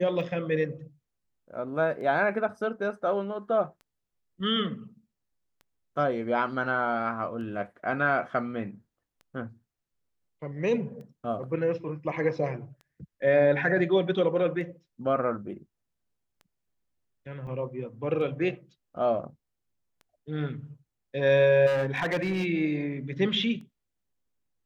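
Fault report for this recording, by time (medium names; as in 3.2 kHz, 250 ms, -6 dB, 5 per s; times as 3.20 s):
tick 33 1/3 rpm
17.47 s: dropout 4.3 ms
21.66–22.46 s: clipped -23 dBFS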